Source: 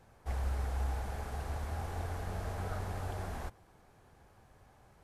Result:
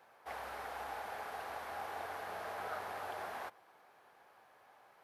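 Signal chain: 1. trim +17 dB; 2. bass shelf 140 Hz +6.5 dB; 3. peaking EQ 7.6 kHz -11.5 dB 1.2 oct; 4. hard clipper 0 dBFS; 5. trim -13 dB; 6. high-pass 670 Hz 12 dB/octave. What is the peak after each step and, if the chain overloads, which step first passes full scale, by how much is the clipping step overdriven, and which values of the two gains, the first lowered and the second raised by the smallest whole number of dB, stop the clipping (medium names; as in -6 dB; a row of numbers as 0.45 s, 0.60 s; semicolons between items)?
-7.0 dBFS, -2.5 dBFS, -2.5 dBFS, -2.5 dBFS, -15.5 dBFS, -29.0 dBFS; nothing clips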